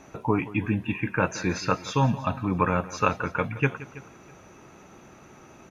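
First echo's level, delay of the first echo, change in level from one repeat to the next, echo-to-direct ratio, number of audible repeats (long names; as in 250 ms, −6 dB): −17.5 dB, 173 ms, repeats not evenly spaced, −15.5 dB, 3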